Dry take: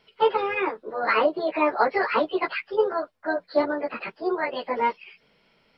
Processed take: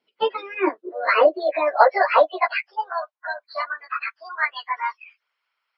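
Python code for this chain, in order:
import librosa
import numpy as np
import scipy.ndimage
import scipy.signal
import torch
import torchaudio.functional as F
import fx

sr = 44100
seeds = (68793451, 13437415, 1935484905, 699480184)

y = fx.filter_sweep_highpass(x, sr, from_hz=270.0, to_hz=1200.0, start_s=0.04, end_s=3.77, q=2.7)
y = fx.hpss(y, sr, part='harmonic', gain_db=-10)
y = fx.noise_reduce_blind(y, sr, reduce_db=16)
y = y * 10.0 ** (4.5 / 20.0)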